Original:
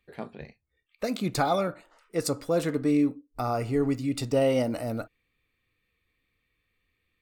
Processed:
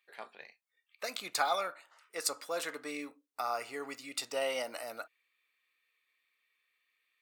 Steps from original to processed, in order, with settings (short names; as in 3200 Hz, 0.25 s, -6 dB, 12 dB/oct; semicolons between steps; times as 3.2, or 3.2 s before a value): HPF 980 Hz 12 dB/oct